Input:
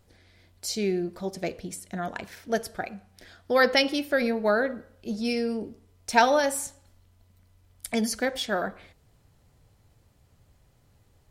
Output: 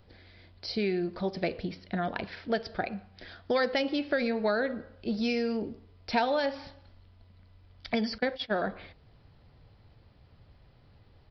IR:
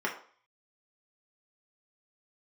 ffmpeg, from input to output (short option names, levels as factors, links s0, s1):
-filter_complex "[0:a]asettb=1/sr,asplit=3[s0][s1][s2];[s0]atrim=end=8.184[s3];[s1]atrim=start=8.18:end=8.58,asetpts=PTS-STARTPTS,afade=t=in:d=0.004:c=qsin,afade=t=out:st=0.396:d=0.004:c=qsin,agate=range=0.112:threshold=0.0316:ratio=16:detection=peak[s4];[s2]atrim=start=8.576[s5];[s3][s4]acrossfade=d=0.004:c1=hsin:c2=qsin[s6];[s6][s5]acrossfade=d=0.004:c1=qsin:c2=hsin,aresample=11025,aresample=44100,acrossover=split=900|2100[s7][s8][s9];[s7]acompressor=threshold=0.0282:ratio=4[s10];[s8]acompressor=threshold=0.00708:ratio=4[s11];[s9]acompressor=threshold=0.01:ratio=4[s12];[s10][s11][s12]amix=inputs=3:normalize=0,volume=1.5"